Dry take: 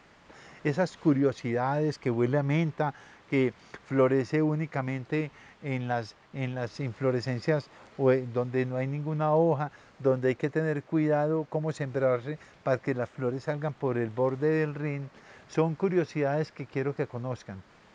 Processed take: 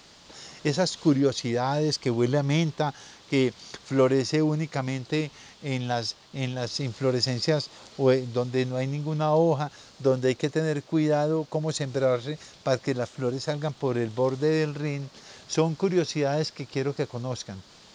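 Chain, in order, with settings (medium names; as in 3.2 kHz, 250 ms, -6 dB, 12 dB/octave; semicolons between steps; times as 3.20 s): resonant high shelf 2.9 kHz +11.5 dB, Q 1.5; trim +2.5 dB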